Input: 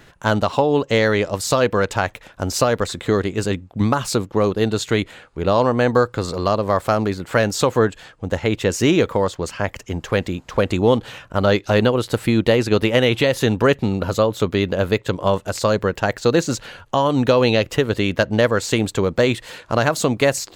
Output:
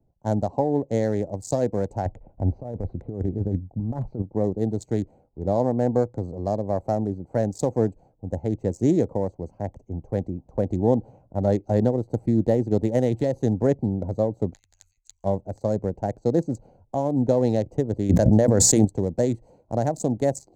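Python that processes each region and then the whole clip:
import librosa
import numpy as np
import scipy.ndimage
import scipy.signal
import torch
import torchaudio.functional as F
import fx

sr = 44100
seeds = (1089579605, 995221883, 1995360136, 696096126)

y = fx.chain(x, sr, fx.lowpass(hz=3200.0, slope=24),
    fx.over_compress(threshold_db=-22.0, ratio=-1.0),
    fx.low_shelf(hz=85.0, db=8.0), at=(2.05, 4.22))
y = fx.chain(y, sr, fx.cheby2_bandstop(low_hz=160.0, high_hz=500.0, order=4, stop_db=80),
    fx.peak_eq(hz=6900.0, db=15.0, octaves=0.39),
    fx.over_compress(threshold_db=-31.0, ratio=-0.5), at=(14.53, 15.24))
y = fx.chain(y, sr, fx.hum_notches(base_hz=60, count=4),
    fx.env_flatten(amount_pct=100), at=(18.09, 18.85))
y = fx.wiener(y, sr, points=25)
y = fx.curve_eq(y, sr, hz=(290.0, 440.0, 790.0, 1200.0, 1900.0, 2800.0, 7000.0, 11000.0), db=(0, -4, 0, -22, -14, -27, 0, -8))
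y = fx.band_widen(y, sr, depth_pct=40)
y = y * 10.0 ** (-3.0 / 20.0)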